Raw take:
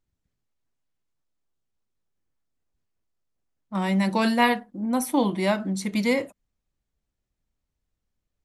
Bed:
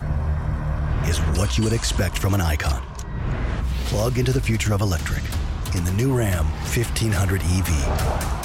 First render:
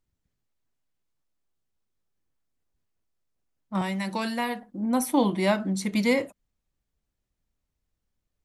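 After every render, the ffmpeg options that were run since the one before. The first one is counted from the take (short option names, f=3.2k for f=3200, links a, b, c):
-filter_complex "[0:a]asettb=1/sr,asplit=3[a][b][c];[a]atrim=end=3.814[d];[b]atrim=start=3.81:end=4.63,asetpts=PTS-STARTPTS,afade=t=in:d=0.004:c=qsin,afade=t=out:st=0.816:d=0.004:c=qsin,acrossover=split=940|5400[e][f][g];[e]acompressor=threshold=-30dB:ratio=4[h];[f]acompressor=threshold=-33dB:ratio=4[i];[g]acompressor=threshold=-46dB:ratio=4[j];[h][i][j]amix=inputs=3:normalize=0[k];[c]atrim=start=4.626[l];[d][k]acrossfade=d=0.004:c1=hsin:c2=qsin[m];[m][l]acrossfade=d=0.004:c1=qsin:c2=hsin"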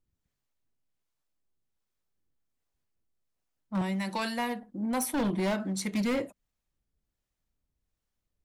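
-filter_complex "[0:a]acrossover=split=500[a][b];[a]aeval=exprs='val(0)*(1-0.5/2+0.5/2*cos(2*PI*1.3*n/s))':c=same[c];[b]aeval=exprs='val(0)*(1-0.5/2-0.5/2*cos(2*PI*1.3*n/s))':c=same[d];[c][d]amix=inputs=2:normalize=0,asoftclip=type=hard:threshold=-25dB"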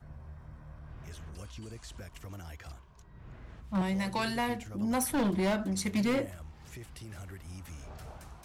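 -filter_complex "[1:a]volume=-24.5dB[a];[0:a][a]amix=inputs=2:normalize=0"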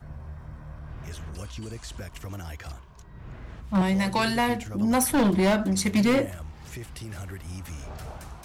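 -af "volume=7.5dB"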